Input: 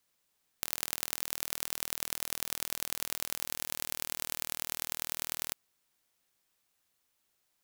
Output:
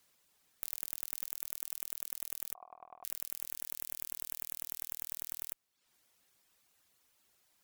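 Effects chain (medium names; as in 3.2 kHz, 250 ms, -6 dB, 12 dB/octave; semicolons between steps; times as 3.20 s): 2.54–3.04 s: cascade formant filter a; valve stage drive 19 dB, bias 0.7; reverb removal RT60 0.65 s; trim +10.5 dB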